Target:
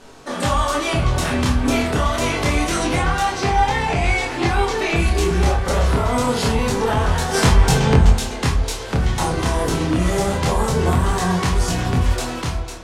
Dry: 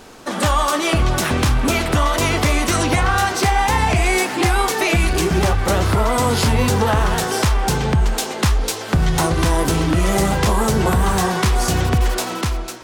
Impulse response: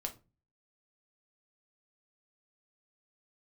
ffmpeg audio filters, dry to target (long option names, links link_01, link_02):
-filter_complex "[0:a]asettb=1/sr,asplit=3[link_01][link_02][link_03];[link_01]atrim=end=3.314[link_04];[link_02]atrim=start=3.31:end=4.96,asetpts=PTS-STARTPTS,afade=type=in:duration=0.004:curve=qsin,afade=type=out:start_time=1.646:duration=0.004:curve=qsin,acrossover=split=6200[link_05][link_06];[link_06]acompressor=threshold=-40dB:ratio=4:attack=1:release=60[link_07];[link_05][link_07]amix=inputs=2:normalize=0[link_08];[link_03]atrim=start=4.956[link_09];[link_04][link_08]acrossfade=duration=0.004:curve1=hsin:curve2=qsin[link_10];[link_10][link_09]acrossfade=duration=0.004:curve1=qsin:curve2=hsin,lowpass=11000,asplit=3[link_11][link_12][link_13];[link_11]afade=type=out:start_time=7.33:duration=0.02[link_14];[link_12]acontrast=75,afade=type=in:start_time=7.33:duration=0.02,afade=type=out:start_time=8.09:duration=0.02[link_15];[link_13]afade=type=in:start_time=8.09:duration=0.02[link_16];[link_14][link_15][link_16]amix=inputs=3:normalize=0,flanger=delay=22.5:depth=6.3:speed=0.26[link_17];[1:a]atrim=start_sample=2205,asetrate=34839,aresample=44100[link_18];[link_17][link_18]afir=irnorm=-1:irlink=0"